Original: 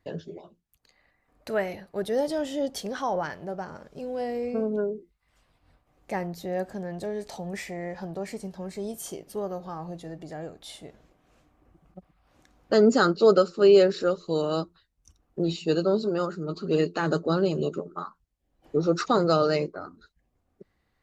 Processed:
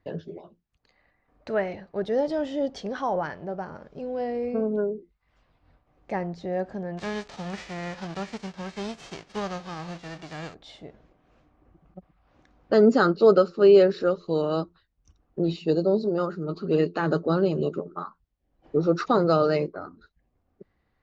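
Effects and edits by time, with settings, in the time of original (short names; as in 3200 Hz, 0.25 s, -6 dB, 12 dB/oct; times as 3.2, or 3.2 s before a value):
6.97–10.53 spectral whitening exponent 0.3
15.7–16.18 band shelf 1900 Hz -12 dB
whole clip: LPF 6400 Hz 24 dB/oct; high shelf 4000 Hz -11.5 dB; gain +1.5 dB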